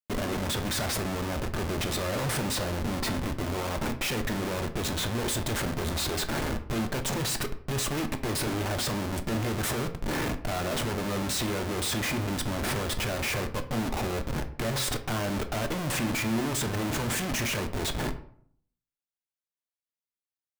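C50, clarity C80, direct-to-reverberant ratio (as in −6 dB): 12.5 dB, 16.5 dB, 6.0 dB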